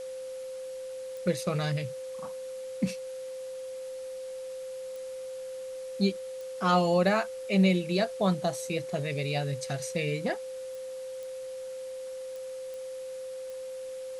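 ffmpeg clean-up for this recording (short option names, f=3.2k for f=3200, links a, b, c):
-af "adeclick=t=4,bandreject=f=520:w=30,afwtdn=0.0025"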